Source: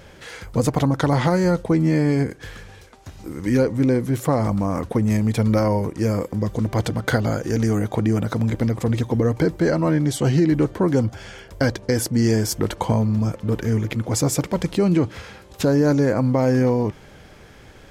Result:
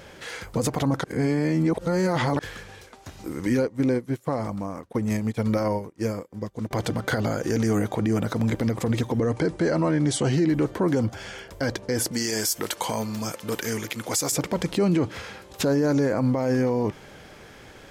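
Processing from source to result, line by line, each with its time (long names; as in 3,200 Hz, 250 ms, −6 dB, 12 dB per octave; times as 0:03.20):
0:01.04–0:02.39: reverse
0:03.62–0:06.71: expander for the loud parts 2.5 to 1, over −33 dBFS
0:09.18–0:10.32: linear-phase brick-wall low-pass 11,000 Hz
0:12.11–0:14.32: spectral tilt +3.5 dB per octave
whole clip: low-shelf EQ 130 Hz −9 dB; brickwall limiter −16 dBFS; level +1.5 dB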